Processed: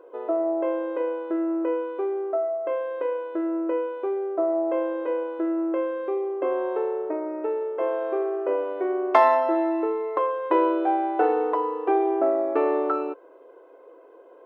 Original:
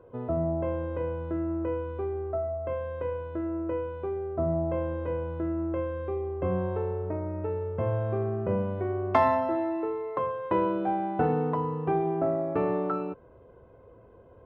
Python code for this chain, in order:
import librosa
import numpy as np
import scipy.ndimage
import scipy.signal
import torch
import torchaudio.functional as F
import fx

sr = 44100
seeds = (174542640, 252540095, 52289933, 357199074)

y = fx.brickwall_highpass(x, sr, low_hz=280.0)
y = y * librosa.db_to_amplitude(5.5)